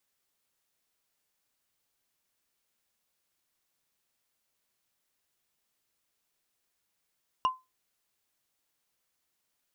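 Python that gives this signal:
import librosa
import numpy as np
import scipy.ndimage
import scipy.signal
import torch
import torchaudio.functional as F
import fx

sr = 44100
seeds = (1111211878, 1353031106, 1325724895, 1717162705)

y = fx.strike_wood(sr, length_s=0.45, level_db=-19.0, body='bar', hz=1030.0, decay_s=0.22, tilt_db=10.0, modes=5)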